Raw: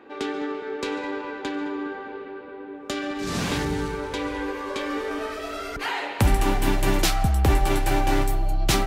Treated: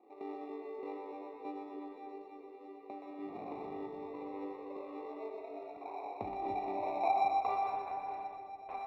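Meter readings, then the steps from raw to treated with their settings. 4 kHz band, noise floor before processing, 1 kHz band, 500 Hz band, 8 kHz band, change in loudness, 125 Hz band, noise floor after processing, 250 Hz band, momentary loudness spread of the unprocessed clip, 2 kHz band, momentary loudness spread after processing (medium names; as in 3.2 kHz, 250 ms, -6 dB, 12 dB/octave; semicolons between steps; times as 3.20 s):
-29.0 dB, -38 dBFS, -6.0 dB, -13.0 dB, under -40 dB, -13.5 dB, -35.0 dB, -52 dBFS, -18.0 dB, 10 LU, -22.5 dB, 16 LU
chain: band-pass sweep 360 Hz -> 2.3 kHz, 6.51–8.02 s; cascade formant filter a; flange 1.7 Hz, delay 8.8 ms, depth 1.4 ms, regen +63%; in parallel at -3.5 dB: sample-and-hold 28×; on the sum: distance through air 420 m; on a send: two-band feedback delay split 550 Hz, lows 289 ms, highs 122 ms, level -5 dB; on the sum: trim +12 dB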